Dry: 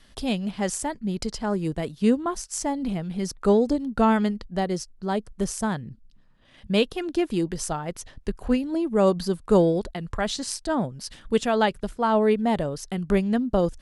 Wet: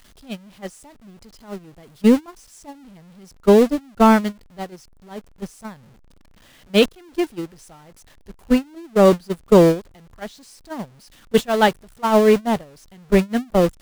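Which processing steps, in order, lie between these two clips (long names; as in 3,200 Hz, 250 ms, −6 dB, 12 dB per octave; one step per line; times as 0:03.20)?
converter with a step at zero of −23.5 dBFS
noise gate −18 dBFS, range −27 dB
level +5.5 dB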